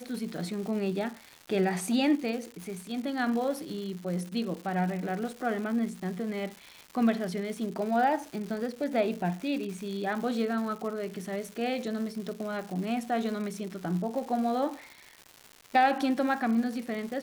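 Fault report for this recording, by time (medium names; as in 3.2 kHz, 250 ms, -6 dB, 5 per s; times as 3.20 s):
crackle 300 per s -37 dBFS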